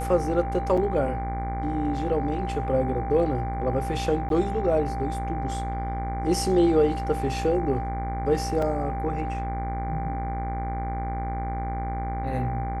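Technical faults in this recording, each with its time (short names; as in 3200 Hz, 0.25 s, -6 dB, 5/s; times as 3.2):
buzz 60 Hz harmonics 39 -31 dBFS
tone 790 Hz -31 dBFS
0.77–0.78 gap 5 ms
4.29–4.3 gap
8.62 gap 3.5 ms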